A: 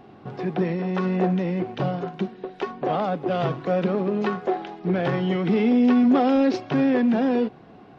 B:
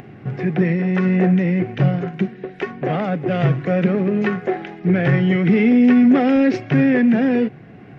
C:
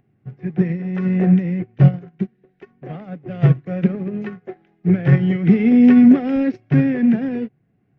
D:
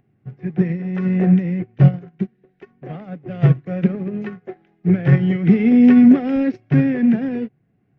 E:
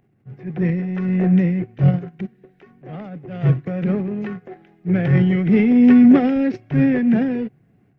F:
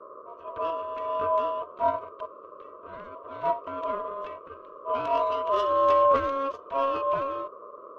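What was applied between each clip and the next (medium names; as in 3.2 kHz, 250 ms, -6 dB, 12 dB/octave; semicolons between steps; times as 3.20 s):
graphic EQ 125/1000/2000/4000 Hz +10/-9/+11/-8 dB; upward compressor, threshold -39 dBFS; trim +3.5 dB
bass shelf 230 Hz +10.5 dB; upward expansion 2.5:1, over -24 dBFS
no audible change
transient shaper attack -8 dB, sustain +7 dB
tracing distortion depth 0.073 ms; band noise 190–440 Hz -35 dBFS; ring modulator 820 Hz; trim -7.5 dB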